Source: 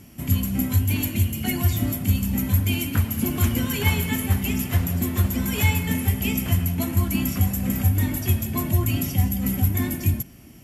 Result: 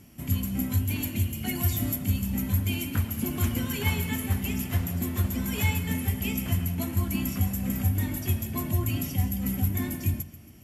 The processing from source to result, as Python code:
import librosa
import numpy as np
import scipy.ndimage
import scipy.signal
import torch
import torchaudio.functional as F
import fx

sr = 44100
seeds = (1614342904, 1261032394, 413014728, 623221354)

y = fx.high_shelf(x, sr, hz=5800.0, db=6.5, at=(1.55, 1.96))
y = fx.echo_feedback(y, sr, ms=138, feedback_pct=48, wet_db=-17)
y = y * 10.0 ** (-5.5 / 20.0)